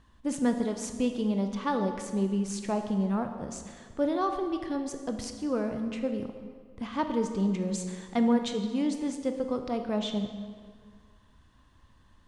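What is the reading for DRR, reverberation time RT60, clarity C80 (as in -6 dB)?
6.0 dB, 1.8 s, 8.5 dB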